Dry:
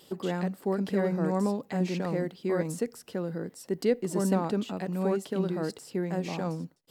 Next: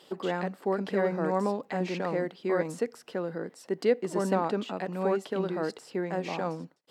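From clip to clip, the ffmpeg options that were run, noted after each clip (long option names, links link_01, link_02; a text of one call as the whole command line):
ffmpeg -i in.wav -af "highpass=frequency=640:poles=1,aemphasis=mode=reproduction:type=75kf,volume=6.5dB" out.wav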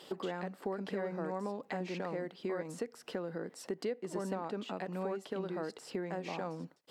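ffmpeg -i in.wav -af "acompressor=threshold=-39dB:ratio=4,volume=2.5dB" out.wav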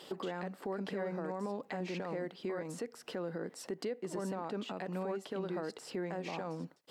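ffmpeg -i in.wav -af "alimiter=level_in=7dB:limit=-24dB:level=0:latency=1:release=28,volume=-7dB,volume=1.5dB" out.wav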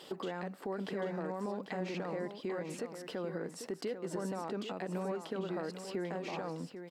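ffmpeg -i in.wav -af "aecho=1:1:794:0.355" out.wav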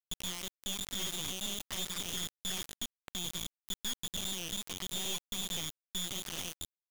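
ffmpeg -i in.wav -af "lowpass=frequency=3200:width_type=q:width=0.5098,lowpass=frequency=3200:width_type=q:width=0.6013,lowpass=frequency=3200:width_type=q:width=0.9,lowpass=frequency=3200:width_type=q:width=2.563,afreqshift=-3800,acrusher=bits=3:dc=4:mix=0:aa=0.000001,volume=1.5dB" out.wav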